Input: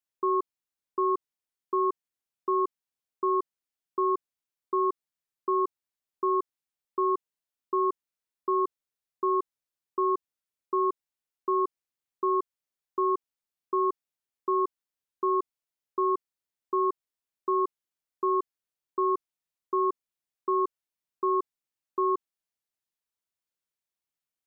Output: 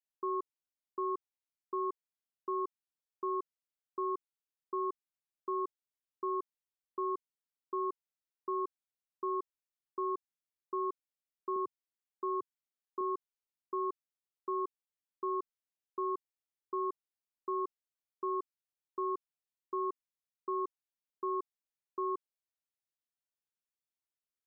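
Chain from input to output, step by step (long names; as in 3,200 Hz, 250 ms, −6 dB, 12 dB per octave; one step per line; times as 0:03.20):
0:11.56–0:13.01: high-pass filter 110 Hz 24 dB per octave
level −9 dB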